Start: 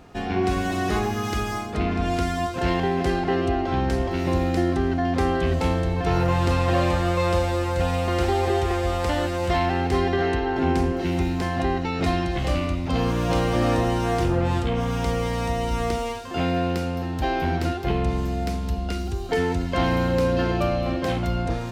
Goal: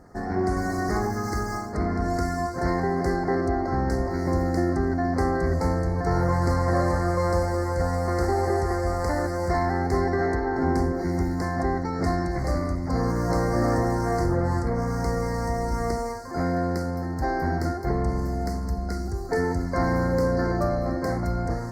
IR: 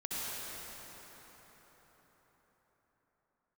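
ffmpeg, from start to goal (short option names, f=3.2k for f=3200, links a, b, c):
-af "asuperstop=centerf=3000:order=12:qfactor=1.3,volume=-1.5dB" -ar 48000 -c:a libopus -b:a 20k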